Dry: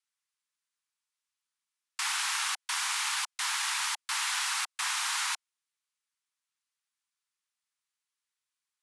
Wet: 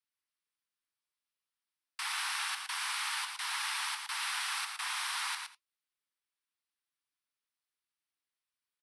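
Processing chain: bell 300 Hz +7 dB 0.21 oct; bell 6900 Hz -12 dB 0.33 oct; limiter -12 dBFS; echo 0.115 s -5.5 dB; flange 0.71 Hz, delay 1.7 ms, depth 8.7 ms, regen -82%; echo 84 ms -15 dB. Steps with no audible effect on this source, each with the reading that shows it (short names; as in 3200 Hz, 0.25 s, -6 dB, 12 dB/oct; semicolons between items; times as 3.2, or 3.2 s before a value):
bell 300 Hz: input band starts at 640 Hz; limiter -12 dBFS: input peak -19.0 dBFS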